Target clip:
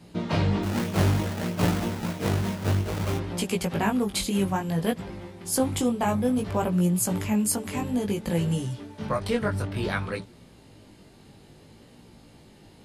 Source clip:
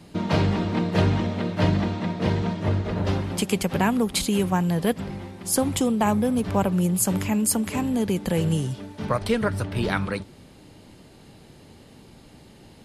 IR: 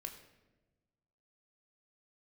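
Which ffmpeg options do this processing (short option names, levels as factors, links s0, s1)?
-filter_complex "[0:a]asplit=3[s0][s1][s2];[s0]afade=t=out:st=0.62:d=0.02[s3];[s1]acrusher=samples=28:mix=1:aa=0.000001:lfo=1:lforange=28:lforate=3.1,afade=t=in:st=0.62:d=0.02,afade=t=out:st=3.17:d=0.02[s4];[s2]afade=t=in:st=3.17:d=0.02[s5];[s3][s4][s5]amix=inputs=3:normalize=0,flanger=delay=17:depth=3.8:speed=0.58"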